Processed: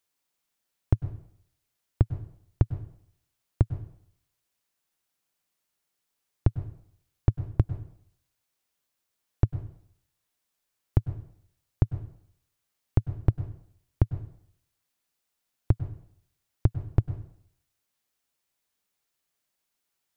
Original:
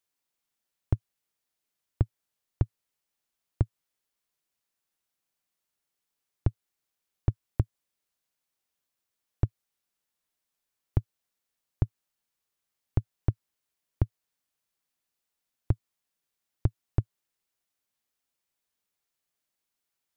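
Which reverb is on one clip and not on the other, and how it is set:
dense smooth reverb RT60 0.64 s, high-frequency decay 0.85×, pre-delay 90 ms, DRR 12.5 dB
level +3.5 dB

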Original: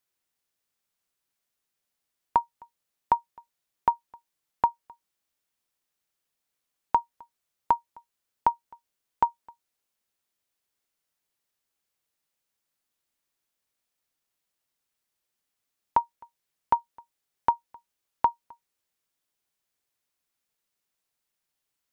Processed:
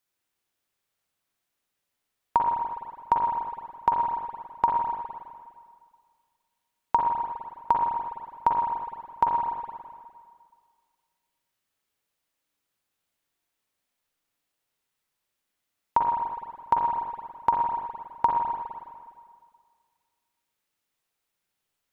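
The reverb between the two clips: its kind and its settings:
spring reverb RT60 1.9 s, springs 41/51/58 ms, chirp 20 ms, DRR −1 dB

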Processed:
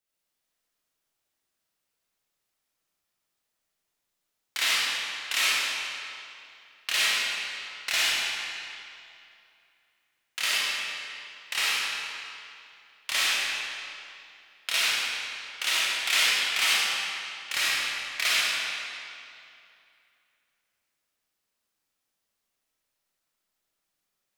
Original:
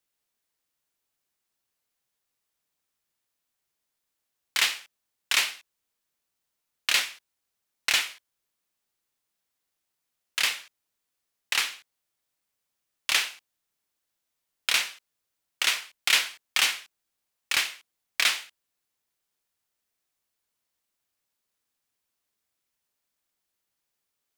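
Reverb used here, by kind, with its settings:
comb and all-pass reverb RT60 2.6 s, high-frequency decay 0.85×, pre-delay 10 ms, DRR −8.5 dB
level −6.5 dB

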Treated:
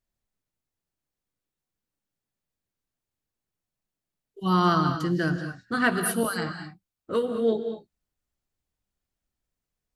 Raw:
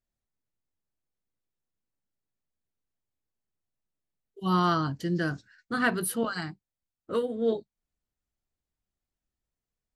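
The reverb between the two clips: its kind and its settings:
reverb whose tail is shaped and stops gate 250 ms rising, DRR 7 dB
level +2.5 dB

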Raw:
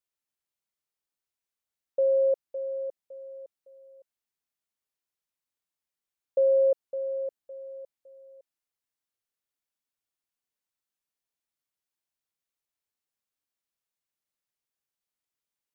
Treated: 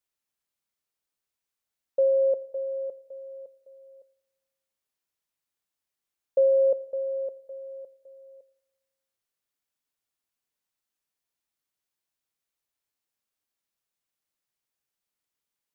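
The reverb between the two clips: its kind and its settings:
four-comb reverb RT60 1.2 s, combs from 28 ms, DRR 18.5 dB
level +2.5 dB

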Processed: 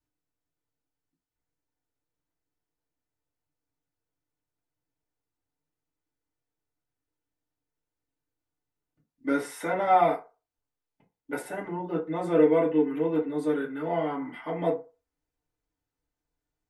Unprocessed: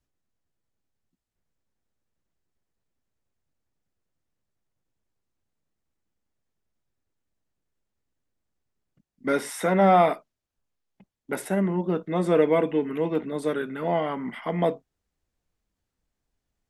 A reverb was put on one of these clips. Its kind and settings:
feedback delay network reverb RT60 0.31 s, low-frequency decay 0.7×, high-frequency decay 0.5×, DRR −5.5 dB
level −10.5 dB

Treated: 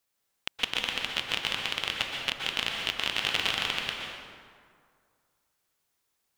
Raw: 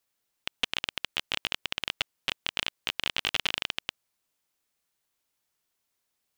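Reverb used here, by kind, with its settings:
dense smooth reverb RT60 2.1 s, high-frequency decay 0.55×, pre-delay 110 ms, DRR −0.5 dB

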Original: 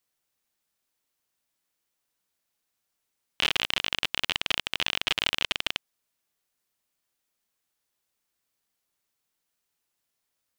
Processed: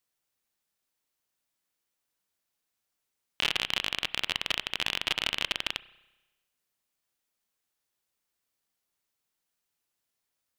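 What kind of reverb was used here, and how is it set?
spring reverb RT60 1.1 s, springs 31 ms, chirp 60 ms, DRR 17.5 dB
level −2.5 dB

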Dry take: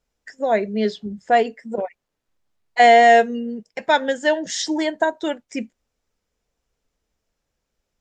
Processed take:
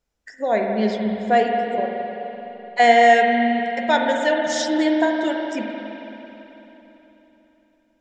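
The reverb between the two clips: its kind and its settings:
spring reverb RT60 3.6 s, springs 42/55 ms, chirp 55 ms, DRR 1 dB
level −2 dB

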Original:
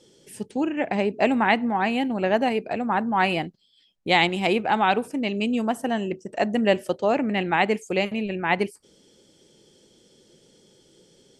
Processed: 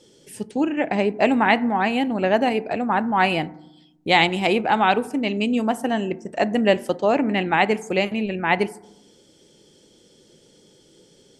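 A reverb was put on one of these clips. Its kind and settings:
feedback delay network reverb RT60 0.84 s, low-frequency decay 1.6×, high-frequency decay 0.3×, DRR 16 dB
level +2.5 dB

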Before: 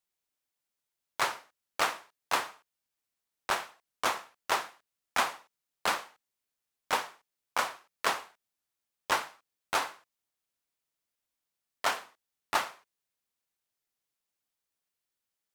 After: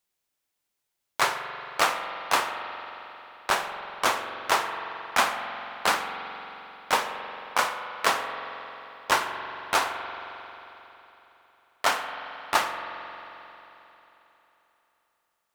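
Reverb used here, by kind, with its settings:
spring reverb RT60 3.5 s, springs 44 ms, chirp 35 ms, DRR 6 dB
level +5.5 dB

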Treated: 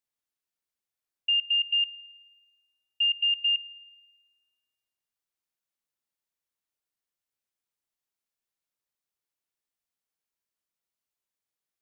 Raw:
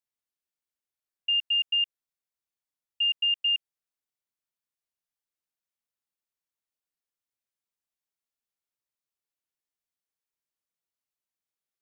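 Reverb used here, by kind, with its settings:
spring reverb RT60 1.4 s, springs 42 ms, chirp 65 ms, DRR 20 dB
level +1 dB

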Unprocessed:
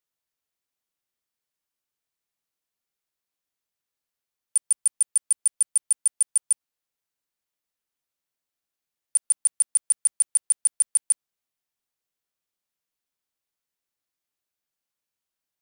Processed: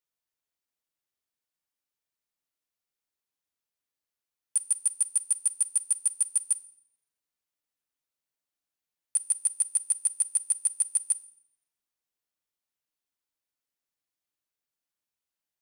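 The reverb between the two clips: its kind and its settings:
feedback delay network reverb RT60 0.67 s, low-frequency decay 1.4×, high-frequency decay 0.95×, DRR 12.5 dB
level −4 dB

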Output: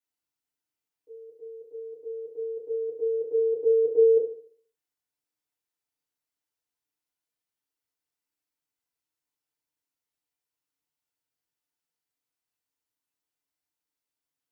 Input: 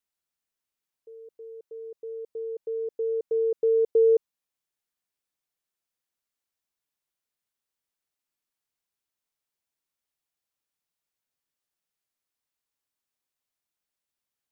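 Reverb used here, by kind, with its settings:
feedback delay network reverb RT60 0.52 s, low-frequency decay 1×, high-frequency decay 0.8×, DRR −8.5 dB
level −11 dB

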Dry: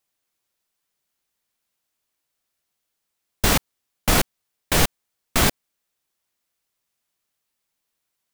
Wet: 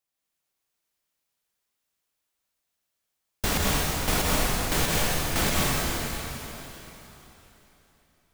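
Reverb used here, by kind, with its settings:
dense smooth reverb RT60 3.6 s, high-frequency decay 0.95×, pre-delay 110 ms, DRR −5 dB
level −8 dB

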